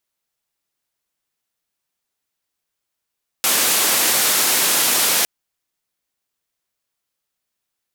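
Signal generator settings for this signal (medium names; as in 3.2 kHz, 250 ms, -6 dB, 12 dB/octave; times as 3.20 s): noise band 210–15000 Hz, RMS -17 dBFS 1.81 s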